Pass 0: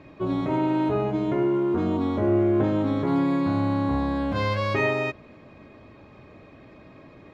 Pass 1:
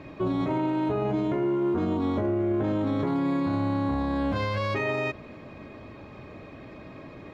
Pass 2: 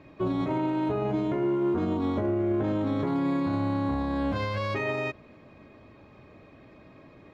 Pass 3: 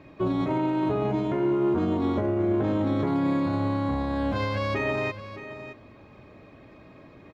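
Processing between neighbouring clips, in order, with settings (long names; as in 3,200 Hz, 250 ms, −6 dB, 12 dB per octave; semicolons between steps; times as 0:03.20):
brickwall limiter −24 dBFS, peak gain reduction 11.5 dB; level +4.5 dB
expander for the loud parts 1.5 to 1, over −40 dBFS
single-tap delay 618 ms −12.5 dB; level +2 dB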